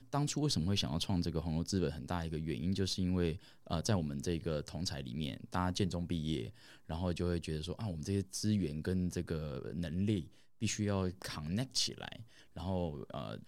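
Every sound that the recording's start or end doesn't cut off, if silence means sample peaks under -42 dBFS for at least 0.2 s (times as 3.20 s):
3.67–6.50 s
6.90–10.24 s
10.62–12.21 s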